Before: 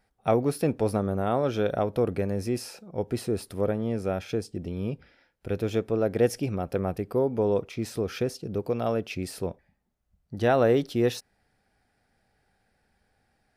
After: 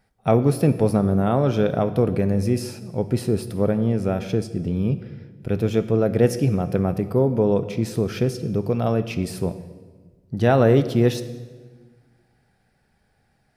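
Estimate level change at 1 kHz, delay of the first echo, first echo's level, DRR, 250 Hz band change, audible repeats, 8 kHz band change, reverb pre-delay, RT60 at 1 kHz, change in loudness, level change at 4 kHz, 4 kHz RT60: +3.5 dB, none, none, 10.5 dB, +8.0 dB, none, +3.5 dB, 3 ms, 1.3 s, +6.0 dB, +3.5 dB, 1.2 s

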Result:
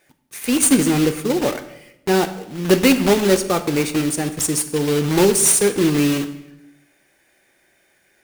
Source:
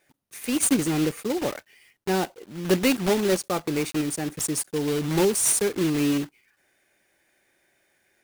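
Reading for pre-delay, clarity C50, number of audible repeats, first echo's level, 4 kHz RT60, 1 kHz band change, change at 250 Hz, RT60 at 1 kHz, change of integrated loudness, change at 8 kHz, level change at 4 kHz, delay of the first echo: 5 ms, 12.5 dB, none, none, 0.80 s, +6.5 dB, +7.0 dB, 0.80 s, +7.0 dB, +7.0 dB, +7.0 dB, none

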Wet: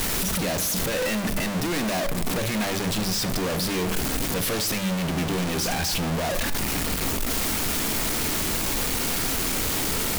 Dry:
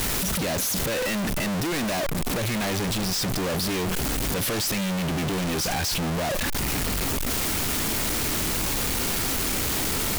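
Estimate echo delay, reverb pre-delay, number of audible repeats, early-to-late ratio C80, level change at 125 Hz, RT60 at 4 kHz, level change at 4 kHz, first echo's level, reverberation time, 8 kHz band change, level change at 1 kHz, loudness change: none, 4 ms, none, 16.0 dB, -0.5 dB, 0.50 s, +0.5 dB, none, 0.85 s, +0.5 dB, +0.5 dB, +0.5 dB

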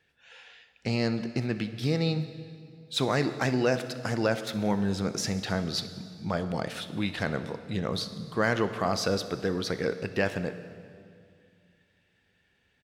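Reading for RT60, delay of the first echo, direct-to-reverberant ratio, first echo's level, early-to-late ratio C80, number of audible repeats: 2.3 s, 63 ms, 10.0 dB, -20.0 dB, 12.5 dB, 1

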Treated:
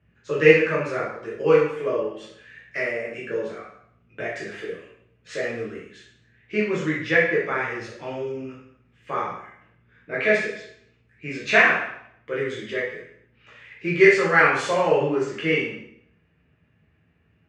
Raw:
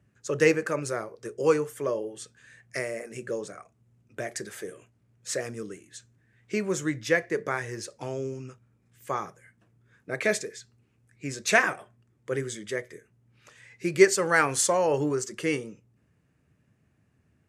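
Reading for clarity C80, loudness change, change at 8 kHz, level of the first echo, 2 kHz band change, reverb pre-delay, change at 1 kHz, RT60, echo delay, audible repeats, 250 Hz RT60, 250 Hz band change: 6.5 dB, +5.5 dB, -12.5 dB, none, +7.5 dB, 5 ms, +5.0 dB, 0.70 s, none, none, 0.70 s, +3.5 dB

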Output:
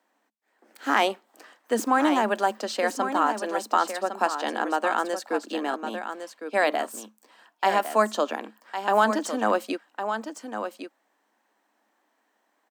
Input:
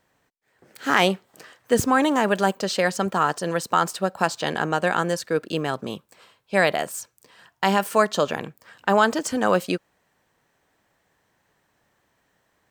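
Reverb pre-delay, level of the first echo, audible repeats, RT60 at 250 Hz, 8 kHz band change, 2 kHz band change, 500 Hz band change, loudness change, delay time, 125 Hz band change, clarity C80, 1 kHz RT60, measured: none, -8.5 dB, 1, none, -5.5 dB, -3.5 dB, -3.0 dB, -3.0 dB, 1.107 s, under -15 dB, none, none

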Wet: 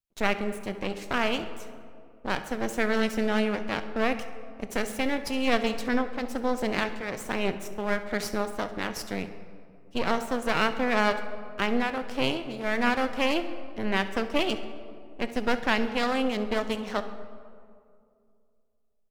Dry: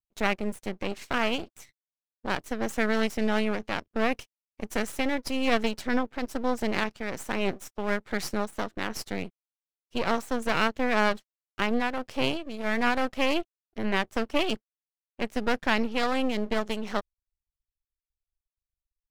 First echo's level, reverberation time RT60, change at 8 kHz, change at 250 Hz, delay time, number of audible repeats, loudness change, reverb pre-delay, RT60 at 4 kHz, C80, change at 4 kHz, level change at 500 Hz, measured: -18.0 dB, 2.3 s, +0.5 dB, +0.5 dB, 67 ms, 1, +0.5 dB, 6 ms, 1.1 s, 12.5 dB, +0.5 dB, +1.0 dB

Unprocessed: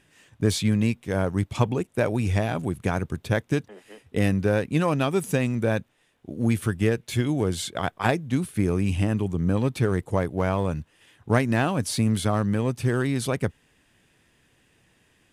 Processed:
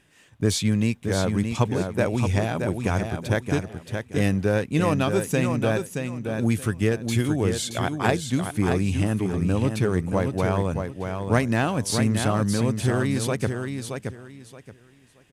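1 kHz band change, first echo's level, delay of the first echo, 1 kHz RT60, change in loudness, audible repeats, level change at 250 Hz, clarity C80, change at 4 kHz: +1.0 dB, -6.0 dB, 0.624 s, none, +0.5 dB, 3, +1.0 dB, none, +2.5 dB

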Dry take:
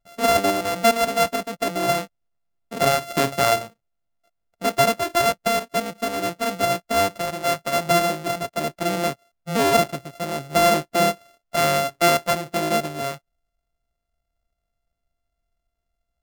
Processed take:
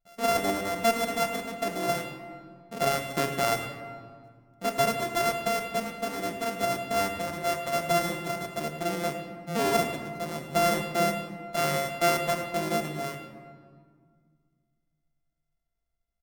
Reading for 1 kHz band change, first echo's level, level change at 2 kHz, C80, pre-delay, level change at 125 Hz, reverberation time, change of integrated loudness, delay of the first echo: -7.0 dB, -15.5 dB, -6.0 dB, 8.0 dB, 3 ms, -5.0 dB, 1.9 s, -6.5 dB, 0.105 s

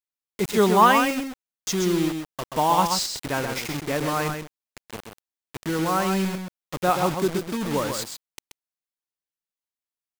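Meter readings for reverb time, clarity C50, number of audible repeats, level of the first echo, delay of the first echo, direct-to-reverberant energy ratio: none, none, 1, -6.0 dB, 0.13 s, none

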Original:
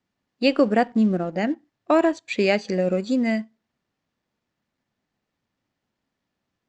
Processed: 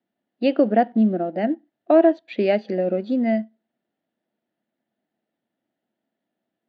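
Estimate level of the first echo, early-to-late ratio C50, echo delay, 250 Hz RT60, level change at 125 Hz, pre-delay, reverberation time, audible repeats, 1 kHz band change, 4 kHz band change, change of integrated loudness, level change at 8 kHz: none, none, none, none, n/a, none, none, none, +1.5 dB, -7.0 dB, +1.5 dB, n/a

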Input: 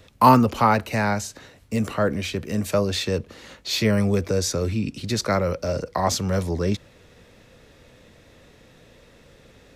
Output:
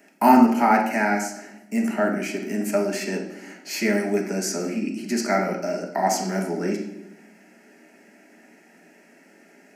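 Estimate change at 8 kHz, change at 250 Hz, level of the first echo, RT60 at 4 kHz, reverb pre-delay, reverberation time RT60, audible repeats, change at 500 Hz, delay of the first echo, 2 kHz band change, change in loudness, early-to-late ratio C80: 0.0 dB, +2.0 dB, none, 0.70 s, 4 ms, 0.90 s, none, -0.5 dB, none, +2.5 dB, 0.0 dB, 10.0 dB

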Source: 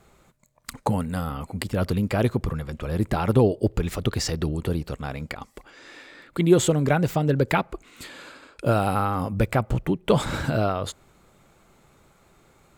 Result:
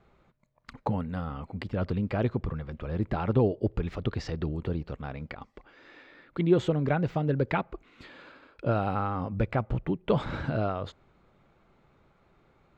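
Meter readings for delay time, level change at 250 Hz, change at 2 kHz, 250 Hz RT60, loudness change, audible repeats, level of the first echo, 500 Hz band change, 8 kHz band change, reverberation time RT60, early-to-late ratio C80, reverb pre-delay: none, -5.5 dB, -7.0 dB, none, -5.5 dB, none, none, -5.5 dB, under -20 dB, none, none, none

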